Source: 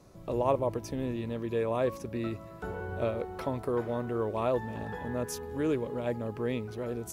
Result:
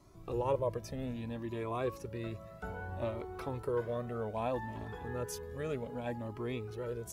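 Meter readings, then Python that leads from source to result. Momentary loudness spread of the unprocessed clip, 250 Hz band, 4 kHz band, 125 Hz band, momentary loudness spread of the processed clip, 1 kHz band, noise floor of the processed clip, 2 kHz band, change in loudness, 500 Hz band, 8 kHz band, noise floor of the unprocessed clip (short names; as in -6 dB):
8 LU, -7.0 dB, -4.0 dB, -3.5 dB, 7 LU, -4.5 dB, -51 dBFS, -4.0 dB, -5.5 dB, -5.5 dB, -4.5 dB, -47 dBFS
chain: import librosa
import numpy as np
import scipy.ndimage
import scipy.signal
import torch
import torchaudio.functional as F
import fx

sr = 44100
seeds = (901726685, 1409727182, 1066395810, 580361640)

y = fx.comb_cascade(x, sr, direction='rising', hz=0.63)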